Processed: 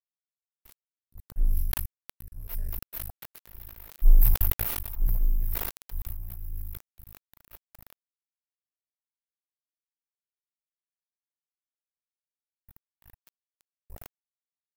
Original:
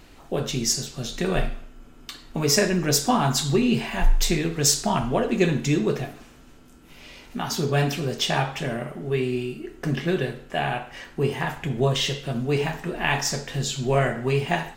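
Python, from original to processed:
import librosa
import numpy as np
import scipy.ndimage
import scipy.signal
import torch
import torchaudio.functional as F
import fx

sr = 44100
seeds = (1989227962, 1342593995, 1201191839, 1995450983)

p1 = fx.reverse_delay(x, sr, ms=155, wet_db=-9.5)
p2 = fx.clip_asym(p1, sr, top_db=-16.5, bottom_db=-11.5)
p3 = p1 + (p2 * librosa.db_to_amplitude(-12.0))
p4 = scipy.signal.sosfilt(scipy.signal.cheby2(4, 40, [110.0, 7400.0], 'bandstop', fs=sr, output='sos'), p3)
p5 = p4 + fx.echo_diffused(p4, sr, ms=1024, feedback_pct=43, wet_db=-4.5, dry=0)
p6 = fx.noise_reduce_blind(p5, sr, reduce_db=23)
p7 = fx.dynamic_eq(p6, sr, hz=8400.0, q=0.73, threshold_db=-58.0, ratio=4.0, max_db=-5)
p8 = np.sign(p7) * np.maximum(np.abs(p7) - 10.0 ** (-34.5 / 20.0), 0.0)
y = fx.sustainer(p8, sr, db_per_s=32.0)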